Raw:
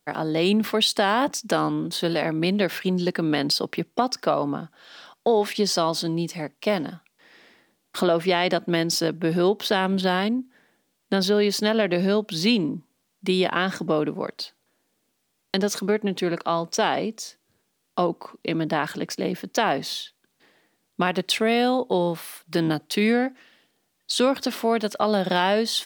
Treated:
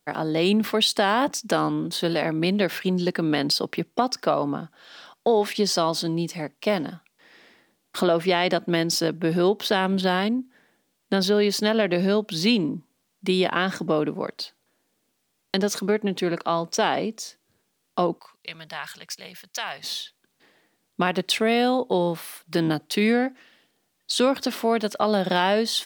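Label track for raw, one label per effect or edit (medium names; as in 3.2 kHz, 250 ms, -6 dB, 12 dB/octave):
18.190000	19.840000	amplifier tone stack bass-middle-treble 10-0-10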